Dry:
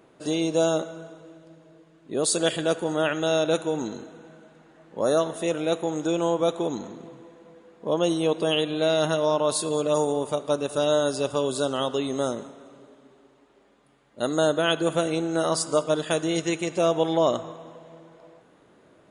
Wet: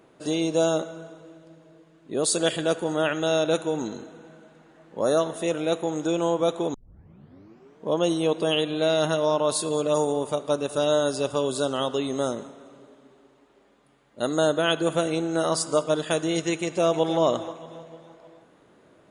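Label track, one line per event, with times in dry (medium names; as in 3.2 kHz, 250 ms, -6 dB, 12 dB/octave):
6.740000	6.740000	tape start 1.14 s
16.610000	17.200000	echo throw 310 ms, feedback 40%, level -12.5 dB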